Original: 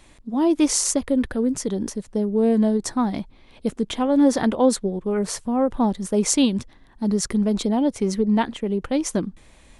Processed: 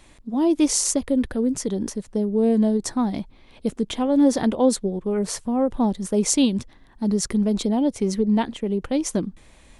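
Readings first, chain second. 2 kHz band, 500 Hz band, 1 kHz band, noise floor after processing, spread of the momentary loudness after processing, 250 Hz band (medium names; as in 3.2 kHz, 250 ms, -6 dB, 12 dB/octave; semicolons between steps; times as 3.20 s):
-3.0 dB, -0.5 dB, -2.5 dB, -52 dBFS, 9 LU, 0.0 dB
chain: dynamic bell 1.4 kHz, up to -5 dB, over -36 dBFS, Q 0.93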